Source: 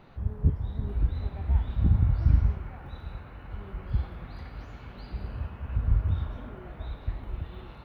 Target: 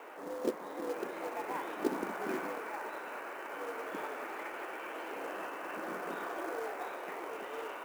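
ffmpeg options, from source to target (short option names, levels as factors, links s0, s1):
-af "highpass=f=290:t=q:w=0.5412,highpass=f=290:t=q:w=1.307,lowpass=f=2800:t=q:w=0.5176,lowpass=f=2800:t=q:w=0.7071,lowpass=f=2800:t=q:w=1.932,afreqshift=84,acrusher=bits=4:mode=log:mix=0:aa=0.000001,volume=2.66"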